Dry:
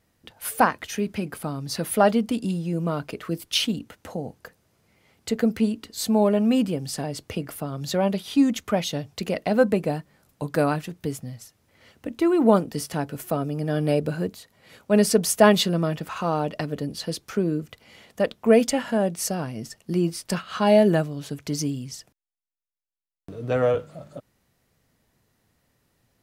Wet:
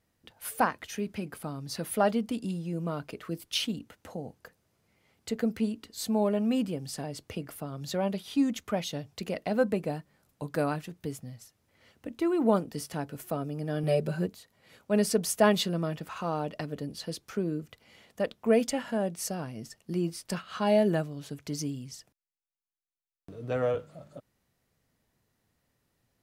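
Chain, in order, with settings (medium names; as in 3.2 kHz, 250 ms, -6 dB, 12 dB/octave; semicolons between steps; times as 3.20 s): 13.83–14.26 s: comb 5.2 ms, depth 88%; trim -7 dB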